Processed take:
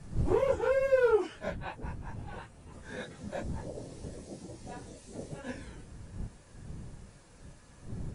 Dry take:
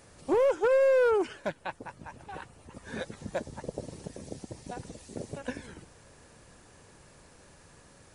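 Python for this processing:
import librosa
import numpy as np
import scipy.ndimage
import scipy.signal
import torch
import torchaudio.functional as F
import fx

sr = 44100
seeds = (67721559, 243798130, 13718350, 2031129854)

y = fx.phase_scramble(x, sr, seeds[0], window_ms=100)
y = fx.dmg_wind(y, sr, seeds[1], corner_hz=120.0, level_db=-39.0)
y = y * 10.0 ** (-3.0 / 20.0)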